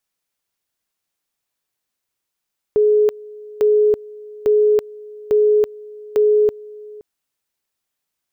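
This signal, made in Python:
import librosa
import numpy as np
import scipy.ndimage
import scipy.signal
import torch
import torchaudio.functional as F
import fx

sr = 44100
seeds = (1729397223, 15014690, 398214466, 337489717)

y = fx.two_level_tone(sr, hz=422.0, level_db=-10.5, drop_db=22.5, high_s=0.33, low_s=0.52, rounds=5)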